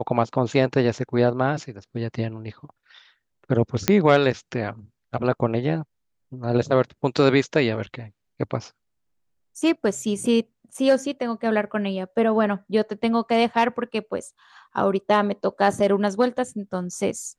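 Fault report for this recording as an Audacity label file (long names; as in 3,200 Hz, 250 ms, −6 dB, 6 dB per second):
3.880000	3.880000	click −2 dBFS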